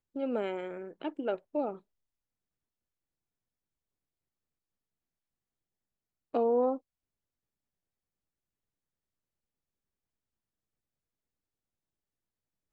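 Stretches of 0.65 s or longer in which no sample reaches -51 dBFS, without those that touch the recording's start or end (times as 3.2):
1.79–6.34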